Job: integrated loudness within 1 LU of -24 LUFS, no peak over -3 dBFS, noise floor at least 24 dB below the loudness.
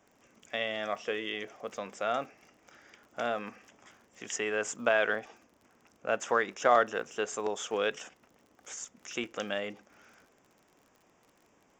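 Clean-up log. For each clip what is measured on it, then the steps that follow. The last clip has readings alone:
tick rate 45 per s; loudness -32.5 LUFS; peak level -10.0 dBFS; loudness target -24.0 LUFS
-> de-click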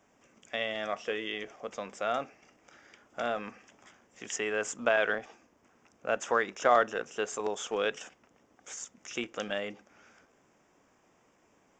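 tick rate 0.085 per s; loudness -32.5 LUFS; peak level -10.0 dBFS; loudness target -24.0 LUFS
-> trim +8.5 dB; peak limiter -3 dBFS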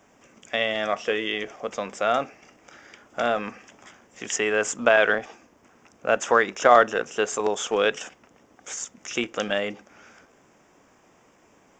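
loudness -24.0 LUFS; peak level -3.0 dBFS; noise floor -59 dBFS

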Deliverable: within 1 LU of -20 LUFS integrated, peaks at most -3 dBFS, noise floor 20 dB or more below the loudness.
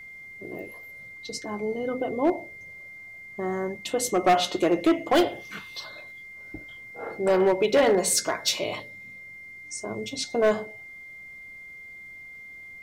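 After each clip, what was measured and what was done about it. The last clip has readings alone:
clipped samples 0.7%; clipping level -14.5 dBFS; steady tone 2.1 kHz; tone level -41 dBFS; loudness -25.5 LUFS; peak level -14.5 dBFS; loudness target -20.0 LUFS
-> clip repair -14.5 dBFS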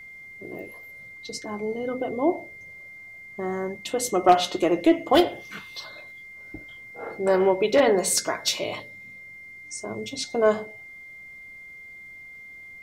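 clipped samples 0.0%; steady tone 2.1 kHz; tone level -41 dBFS
-> band-stop 2.1 kHz, Q 30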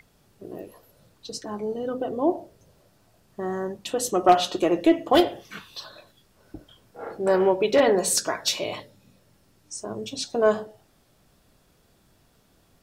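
steady tone not found; loudness -24.0 LUFS; peak level -5.5 dBFS; loudness target -20.0 LUFS
-> trim +4 dB; peak limiter -3 dBFS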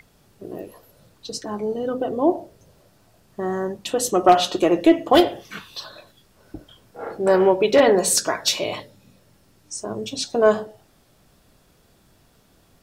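loudness -20.0 LUFS; peak level -3.0 dBFS; noise floor -58 dBFS

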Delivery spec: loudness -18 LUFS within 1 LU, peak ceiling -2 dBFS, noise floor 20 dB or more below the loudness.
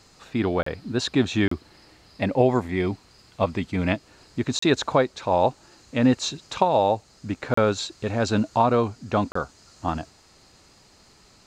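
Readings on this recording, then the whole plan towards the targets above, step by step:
dropouts 5; longest dropout 34 ms; loudness -24.5 LUFS; peak level -4.5 dBFS; loudness target -18.0 LUFS
-> interpolate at 0.63/1.48/4.59/7.54/9.32 s, 34 ms; trim +6.5 dB; peak limiter -2 dBFS

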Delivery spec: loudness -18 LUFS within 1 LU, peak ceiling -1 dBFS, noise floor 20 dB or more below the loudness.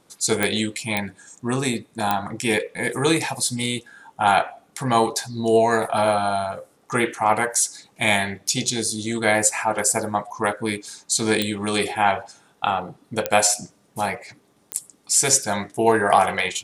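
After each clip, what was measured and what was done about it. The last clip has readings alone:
clicks found 6; loudness -22.0 LUFS; peak level -2.0 dBFS; loudness target -18.0 LUFS
-> de-click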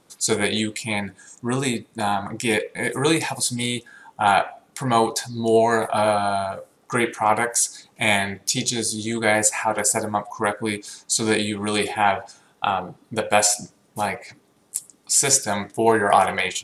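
clicks found 0; loudness -22.0 LUFS; peak level -2.0 dBFS; loudness target -18.0 LUFS
-> trim +4 dB; peak limiter -1 dBFS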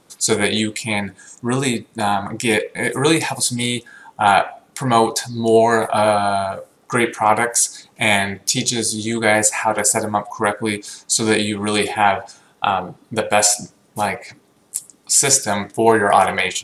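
loudness -18.0 LUFS; peak level -1.0 dBFS; noise floor -56 dBFS

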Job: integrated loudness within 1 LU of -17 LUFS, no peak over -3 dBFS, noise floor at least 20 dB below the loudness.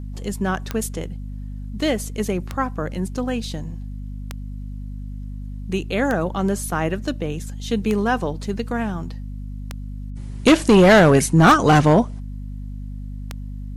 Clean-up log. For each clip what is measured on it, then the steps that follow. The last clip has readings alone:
clicks found 8; hum 50 Hz; highest harmonic 250 Hz; hum level -29 dBFS; loudness -19.5 LUFS; peak level -5.5 dBFS; loudness target -17.0 LUFS
-> de-click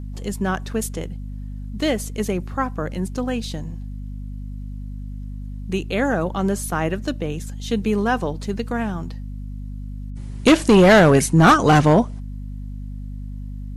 clicks found 0; hum 50 Hz; highest harmonic 250 Hz; hum level -29 dBFS
-> hum notches 50/100/150/200/250 Hz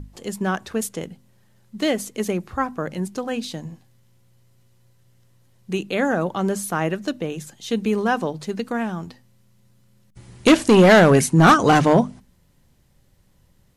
hum not found; loudness -19.5 LUFS; peak level -4.5 dBFS; loudness target -17.0 LUFS
-> trim +2.5 dB; peak limiter -3 dBFS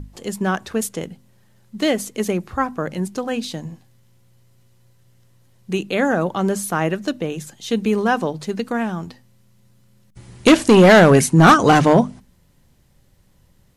loudness -17.5 LUFS; peak level -3.0 dBFS; noise floor -56 dBFS

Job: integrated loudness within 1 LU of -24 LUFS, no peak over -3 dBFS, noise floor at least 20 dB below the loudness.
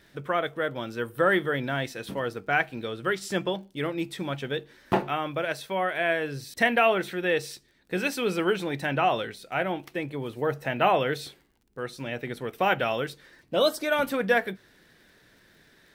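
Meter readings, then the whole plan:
tick rate 32 per s; loudness -27.5 LUFS; peak level -9.5 dBFS; loudness target -24.0 LUFS
-> de-click; trim +3.5 dB

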